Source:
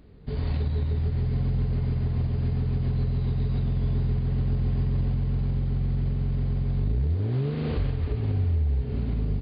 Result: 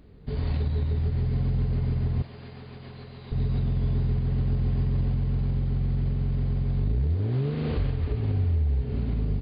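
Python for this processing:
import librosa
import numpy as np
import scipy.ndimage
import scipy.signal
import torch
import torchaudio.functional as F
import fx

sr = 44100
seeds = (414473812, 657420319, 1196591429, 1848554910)

y = fx.highpass(x, sr, hz=860.0, slope=6, at=(2.22, 3.32))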